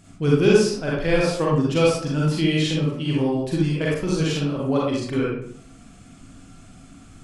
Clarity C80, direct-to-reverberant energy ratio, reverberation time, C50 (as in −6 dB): 3.5 dB, −5.0 dB, 0.60 s, −2.0 dB